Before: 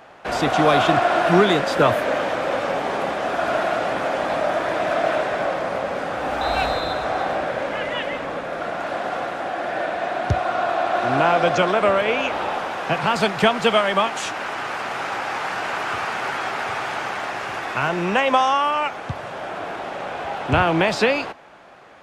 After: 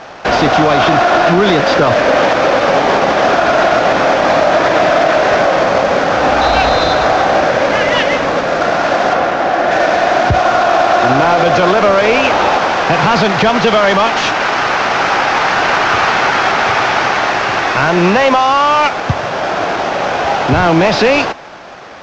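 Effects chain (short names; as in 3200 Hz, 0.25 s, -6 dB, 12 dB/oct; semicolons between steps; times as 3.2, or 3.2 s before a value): CVSD 32 kbps; 9.13–9.71 high shelf 3600 Hz -7.5 dB; maximiser +15 dB; gain -1 dB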